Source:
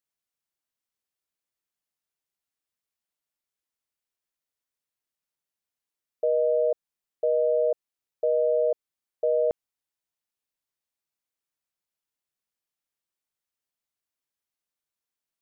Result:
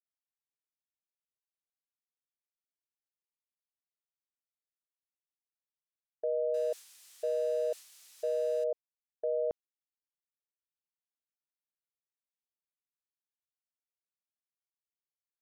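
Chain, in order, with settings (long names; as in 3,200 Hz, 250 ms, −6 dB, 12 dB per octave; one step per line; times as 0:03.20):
0:06.54–0:08.64: spike at every zero crossing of −28.5 dBFS
downward expander −28 dBFS
high-frequency loss of the air 53 metres
level −8 dB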